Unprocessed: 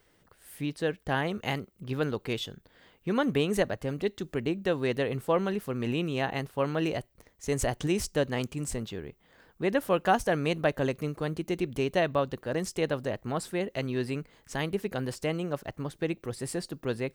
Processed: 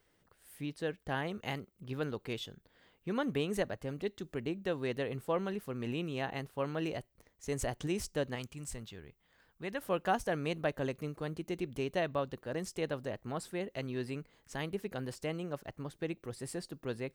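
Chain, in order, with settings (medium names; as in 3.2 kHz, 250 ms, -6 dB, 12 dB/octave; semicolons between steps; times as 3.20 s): 8.35–9.81 s: peaking EQ 360 Hz -7 dB 2.4 oct; trim -7 dB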